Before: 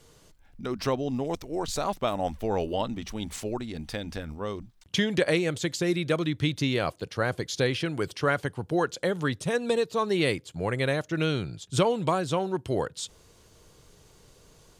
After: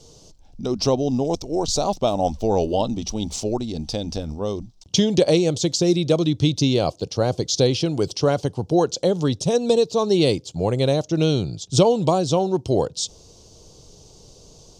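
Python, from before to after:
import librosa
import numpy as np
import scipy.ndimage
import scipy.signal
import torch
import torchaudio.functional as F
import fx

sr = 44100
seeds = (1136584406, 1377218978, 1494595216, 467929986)

y = fx.curve_eq(x, sr, hz=(780.0, 1800.0, 2800.0, 5700.0, 11000.0), db=(0, -20, -6, 7, -12))
y = y * librosa.db_to_amplitude(8.0)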